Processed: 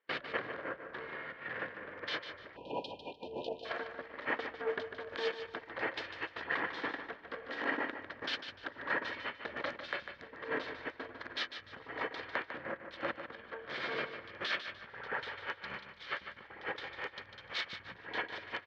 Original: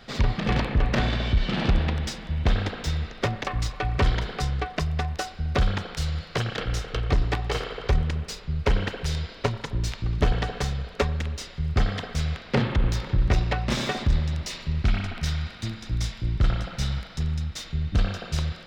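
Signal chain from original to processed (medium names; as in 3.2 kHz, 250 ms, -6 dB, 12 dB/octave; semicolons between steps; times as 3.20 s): rotating-head pitch shifter -8.5 st; gate -35 dBFS, range -39 dB; treble shelf 2.5 kHz +6 dB; peak limiter -20 dBFS, peak gain reduction 10.5 dB; compressor with a negative ratio -37 dBFS, ratio -1; cabinet simulation 340–5000 Hz, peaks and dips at 540 Hz +8 dB, 790 Hz -4 dB, 1.7 kHz +9 dB, 2.6 kHz -6 dB; feedback delay 149 ms, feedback 28%, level -9 dB; spectral selection erased 2.56–3.65 s, 1–2.4 kHz; trim -1.5 dB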